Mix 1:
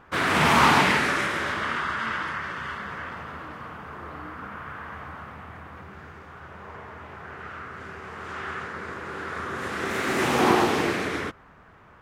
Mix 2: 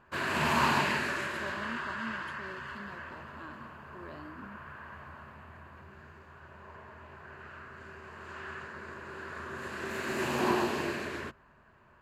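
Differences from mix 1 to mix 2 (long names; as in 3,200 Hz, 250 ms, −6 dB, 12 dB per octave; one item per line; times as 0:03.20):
background −9.5 dB
master: add EQ curve with evenly spaced ripples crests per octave 1.4, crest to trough 7 dB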